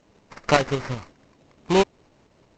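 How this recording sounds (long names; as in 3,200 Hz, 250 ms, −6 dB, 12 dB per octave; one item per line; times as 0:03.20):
a buzz of ramps at a fixed pitch in blocks of 8 samples
tremolo saw up 5.3 Hz, depth 45%
aliases and images of a low sample rate 3,400 Hz, jitter 20%
G.722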